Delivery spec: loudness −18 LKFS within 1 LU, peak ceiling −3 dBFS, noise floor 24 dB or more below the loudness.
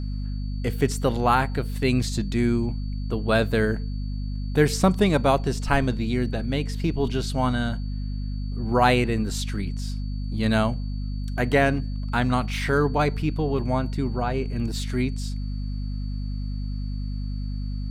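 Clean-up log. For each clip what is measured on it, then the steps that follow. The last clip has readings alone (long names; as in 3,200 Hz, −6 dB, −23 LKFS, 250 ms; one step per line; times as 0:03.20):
mains hum 50 Hz; hum harmonics up to 250 Hz; level of the hum −26 dBFS; interfering tone 4,500 Hz; level of the tone −51 dBFS; integrated loudness −25.5 LKFS; sample peak −5.5 dBFS; target loudness −18.0 LKFS
→ mains-hum notches 50/100/150/200/250 Hz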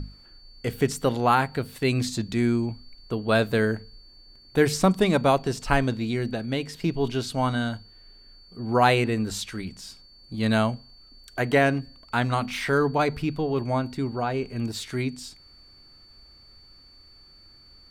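mains hum none found; interfering tone 4,500 Hz; level of the tone −51 dBFS
→ notch filter 4,500 Hz, Q 30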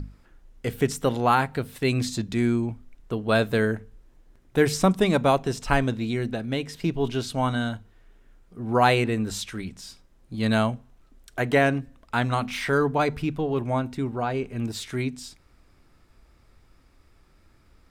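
interfering tone none found; integrated loudness −25.5 LKFS; sample peak −6.0 dBFS; target loudness −18.0 LKFS
→ level +7.5 dB
brickwall limiter −3 dBFS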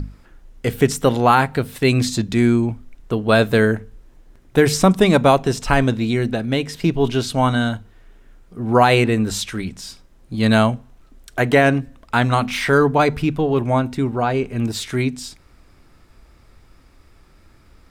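integrated loudness −18.0 LKFS; sample peak −3.0 dBFS; background noise floor −51 dBFS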